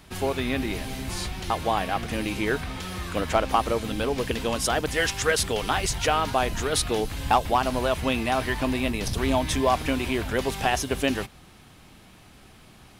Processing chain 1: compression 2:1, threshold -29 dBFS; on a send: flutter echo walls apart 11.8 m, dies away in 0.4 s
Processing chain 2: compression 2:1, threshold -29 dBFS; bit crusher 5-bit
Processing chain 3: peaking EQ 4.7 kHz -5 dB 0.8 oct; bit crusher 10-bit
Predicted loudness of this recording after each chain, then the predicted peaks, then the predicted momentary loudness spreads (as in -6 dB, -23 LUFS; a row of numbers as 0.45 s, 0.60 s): -30.0 LUFS, -28.5 LUFS, -26.0 LUFS; -14.0 dBFS, -14.0 dBFS, -10.0 dBFS; 4 LU, 3 LU, 7 LU